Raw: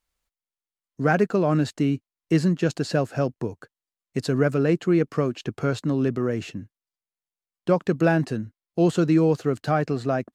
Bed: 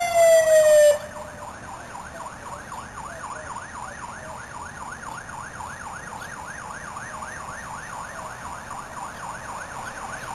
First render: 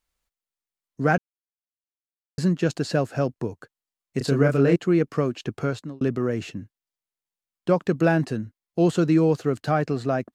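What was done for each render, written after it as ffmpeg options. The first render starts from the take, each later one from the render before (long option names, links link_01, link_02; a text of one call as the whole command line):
ffmpeg -i in.wav -filter_complex "[0:a]asettb=1/sr,asplit=3[link_01][link_02][link_03];[link_01]atrim=end=4.184[link_04];[link_02]atrim=start=4.18:end=4.76,asetpts=PTS-STARTPTS,afade=type=in:duration=0.004:curve=qsin,afade=type=out:start_time=0.576:duration=0.004:curve=qsin,asplit=2[link_05][link_06];[link_06]adelay=29,volume=-3.5dB[link_07];[link_05][link_07]amix=inputs=2:normalize=0,atrim=end_sample=25578[link_08];[link_03]atrim=start=4.756[link_09];[link_04][link_08]acrossfade=duration=0.004:curve1=hsin:curve2=qsin[link_10];[link_10][link_09]acrossfade=duration=0.004:curve1=qsin:curve2=hsin,asplit=4[link_11][link_12][link_13][link_14];[link_11]atrim=end=1.18,asetpts=PTS-STARTPTS,afade=type=out:start_time=1.176:duration=0.004:curve=hsin[link_15];[link_12]atrim=start=1.18:end=2.38,asetpts=PTS-STARTPTS,volume=0[link_16];[link_13]atrim=start=2.38:end=6.01,asetpts=PTS-STARTPTS,afade=type=in:duration=0.004:curve=hsin,afade=type=out:start_time=3.23:duration=0.4[link_17];[link_14]atrim=start=6.01,asetpts=PTS-STARTPTS,afade=type=in:duration=0.004:curve=hsin[link_18];[link_15][link_16][link_17][link_18]concat=n=4:v=0:a=1" out.wav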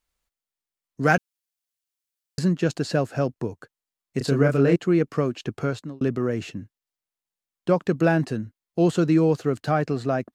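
ffmpeg -i in.wav -filter_complex "[0:a]asettb=1/sr,asplit=3[link_01][link_02][link_03];[link_01]atrim=end=1.034[link_04];[link_02]atrim=start=1.03:end=2.39,asetpts=PTS-STARTPTS,afade=type=in:duration=0.004:curve=qsin,afade=type=out:start_time=1.356:duration=0.004:curve=qsin,highshelf=frequency=2000:gain=10[link_05];[link_03]atrim=start=2.386[link_06];[link_04][link_05]acrossfade=duration=0.004:curve1=hsin:curve2=qsin[link_07];[link_07][link_06]acrossfade=duration=0.004:curve1=qsin:curve2=hsin" out.wav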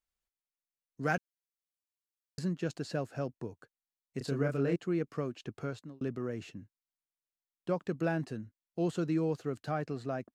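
ffmpeg -i in.wav -af "volume=-12dB" out.wav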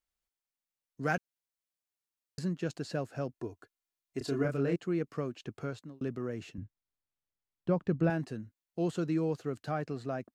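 ffmpeg -i in.wav -filter_complex "[0:a]asettb=1/sr,asplit=3[link_01][link_02][link_03];[link_01]atrim=end=3.344[link_04];[link_02]atrim=start=3.34:end=4.45,asetpts=PTS-STARTPTS,afade=type=in:duration=0.004:curve=qsin,afade=type=out:start_time=1.106:duration=0.004:curve=qsin,aecho=1:1:2.9:0.65,atrim=end_sample=48951[link_05];[link_03]atrim=start=4.446[link_06];[link_04][link_05]acrossfade=duration=0.004:curve1=hsin:curve2=qsin[link_07];[link_07][link_06]acrossfade=duration=0.004:curve1=qsin:curve2=hsin,asettb=1/sr,asplit=3[link_08][link_09][link_10];[link_08]atrim=end=6.584[link_11];[link_09]atrim=start=6.58:end=8.1,asetpts=PTS-STARTPTS,afade=type=in:duration=0.004:curve=qsin,afade=type=out:start_time=1.516:duration=0.004:curve=qsin,aemphasis=mode=reproduction:type=bsi[link_12];[link_10]atrim=start=8.096[link_13];[link_11][link_12]acrossfade=duration=0.004:curve1=hsin:curve2=qsin[link_14];[link_14][link_13]acrossfade=duration=0.004:curve1=qsin:curve2=hsin" out.wav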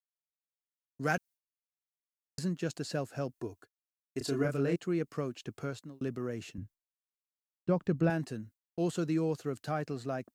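ffmpeg -i in.wav -af "agate=range=-33dB:threshold=-49dB:ratio=3:detection=peak,highshelf=frequency=5700:gain=9.5" out.wav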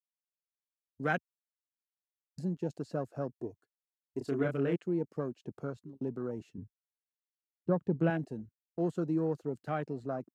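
ffmpeg -i in.wav -af "highpass=120,afwtdn=0.00794" out.wav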